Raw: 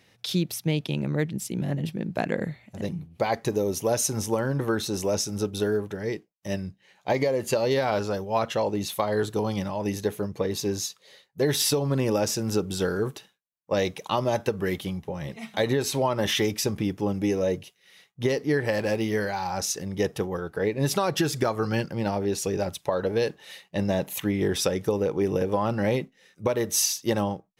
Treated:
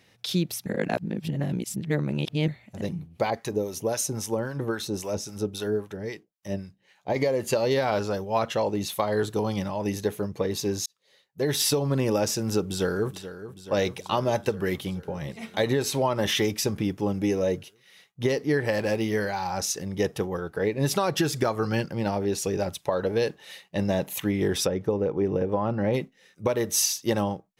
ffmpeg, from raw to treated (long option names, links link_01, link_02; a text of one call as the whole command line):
ffmpeg -i in.wav -filter_complex "[0:a]asettb=1/sr,asplit=3[link_01][link_02][link_03];[link_01]atrim=end=3.304[link_04];[link_02]atrim=start=3.3:end=7.16,asetpts=PTS-STARTPTS,afade=type=in:duration=0.004:curve=qsin,afade=type=out:start_time=3.856:duration=0.004:curve=qsin,acrossover=split=810[link_05][link_06];[link_05]aeval=exprs='val(0)*(1-0.7/2+0.7/2*cos(2*PI*3.7*n/s))':channel_layout=same[link_07];[link_06]aeval=exprs='val(0)*(1-0.7/2-0.7/2*cos(2*PI*3.7*n/s))':channel_layout=same[link_08];[link_07][link_08]amix=inputs=2:normalize=0[link_09];[link_03]atrim=start=7.156[link_10];[link_04][link_09]acrossfade=duration=0.004:curve1=hsin:curve2=qsin[link_11];[link_11][link_10]acrossfade=duration=0.004:curve1=qsin:curve2=hsin,asplit=2[link_12][link_13];[link_13]afade=type=in:start_time=12.62:duration=0.01,afade=type=out:start_time=13.15:duration=0.01,aecho=0:1:430|860|1290|1720|2150|2580|3010|3440|3870|4300|4730:0.223872|0.167904|0.125928|0.094446|0.0708345|0.0531259|0.0398444|0.0298833|0.0224125|0.0168094|0.012607[link_14];[link_12][link_14]amix=inputs=2:normalize=0,asplit=3[link_15][link_16][link_17];[link_15]afade=type=out:start_time=24.65:duration=0.02[link_18];[link_16]lowpass=frequency=1200:poles=1,afade=type=in:start_time=24.65:duration=0.02,afade=type=out:start_time=25.93:duration=0.02[link_19];[link_17]afade=type=in:start_time=25.93:duration=0.02[link_20];[link_18][link_19][link_20]amix=inputs=3:normalize=0,asplit=4[link_21][link_22][link_23][link_24];[link_21]atrim=end=0.662[link_25];[link_22]atrim=start=0.658:end=2.482,asetpts=PTS-STARTPTS,areverse[link_26];[link_23]atrim=start=2.478:end=10.86,asetpts=PTS-STARTPTS,afade=type=out:start_time=8.378:duration=0.004:curve=hsin[link_27];[link_24]atrim=start=10.86,asetpts=PTS-STARTPTS,afade=type=in:duration=0.78[link_28];[link_25][link_26]acrossfade=duration=0.004:curve1=hsin:curve2=hsin[link_29];[link_27][link_28]concat=n=2:v=0:a=1[link_30];[link_29][link_30]acrossfade=duration=0.004:curve1=hsin:curve2=hsin" out.wav